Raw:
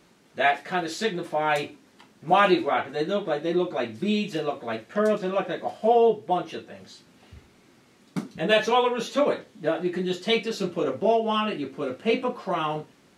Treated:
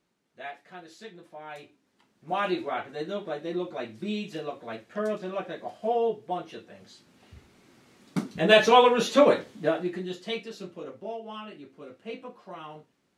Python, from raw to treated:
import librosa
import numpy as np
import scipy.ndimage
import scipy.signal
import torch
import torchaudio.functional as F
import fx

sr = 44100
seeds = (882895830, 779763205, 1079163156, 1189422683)

y = fx.gain(x, sr, db=fx.line((1.56, -18.0), (2.62, -7.0), (6.51, -7.0), (8.76, 4.0), (9.49, 4.0), (10.03, -7.0), (11.01, -15.0)))